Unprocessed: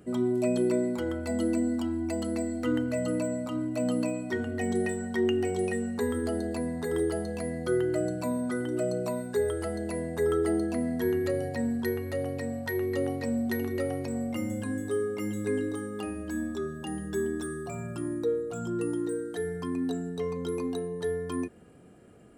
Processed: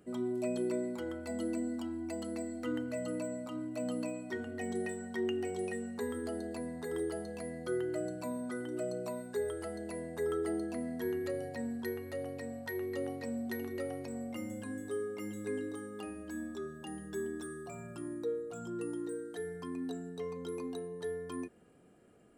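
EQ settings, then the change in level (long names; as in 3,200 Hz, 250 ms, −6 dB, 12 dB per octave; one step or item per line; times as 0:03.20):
parametric band 83 Hz −6 dB 2.2 octaves
−7.0 dB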